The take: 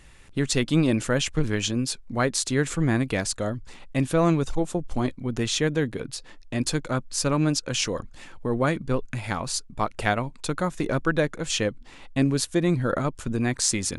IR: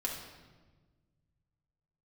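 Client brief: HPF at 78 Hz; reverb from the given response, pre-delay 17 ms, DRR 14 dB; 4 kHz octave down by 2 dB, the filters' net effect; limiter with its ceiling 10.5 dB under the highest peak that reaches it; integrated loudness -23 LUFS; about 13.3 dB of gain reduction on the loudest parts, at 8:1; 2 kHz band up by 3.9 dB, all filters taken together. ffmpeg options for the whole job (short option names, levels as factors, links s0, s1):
-filter_complex "[0:a]highpass=78,equalizer=f=2000:t=o:g=6,equalizer=f=4000:t=o:g=-4.5,acompressor=threshold=0.0282:ratio=8,alimiter=level_in=1.26:limit=0.0631:level=0:latency=1,volume=0.794,asplit=2[s0][s1];[1:a]atrim=start_sample=2205,adelay=17[s2];[s1][s2]afir=irnorm=-1:irlink=0,volume=0.141[s3];[s0][s3]amix=inputs=2:normalize=0,volume=5.01"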